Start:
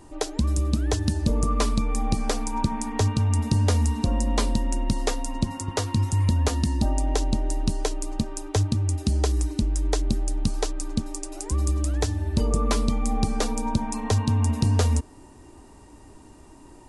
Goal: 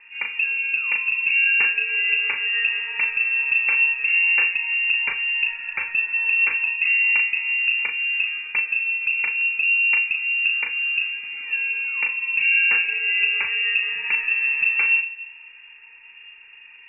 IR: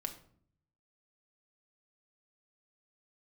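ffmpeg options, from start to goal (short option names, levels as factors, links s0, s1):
-filter_complex "[0:a]asplit=2[s0][s1];[1:a]atrim=start_sample=2205,adelay=36[s2];[s1][s2]afir=irnorm=-1:irlink=0,volume=0.668[s3];[s0][s3]amix=inputs=2:normalize=0,lowpass=f=2400:t=q:w=0.5098,lowpass=f=2400:t=q:w=0.6013,lowpass=f=2400:t=q:w=0.9,lowpass=f=2400:t=q:w=2.563,afreqshift=-2800,asuperstop=centerf=650:order=4:qfactor=4.3"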